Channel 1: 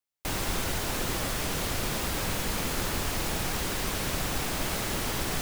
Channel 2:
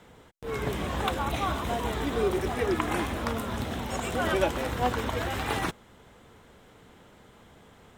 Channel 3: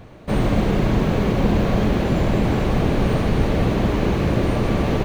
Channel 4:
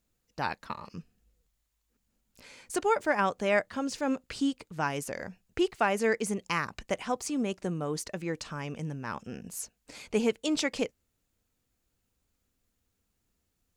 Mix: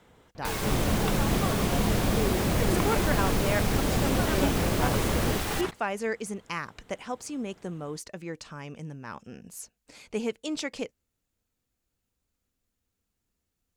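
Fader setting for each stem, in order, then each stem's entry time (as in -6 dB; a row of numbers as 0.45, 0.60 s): -2.0, -5.0, -8.5, -3.5 dB; 0.20, 0.00, 0.35, 0.00 s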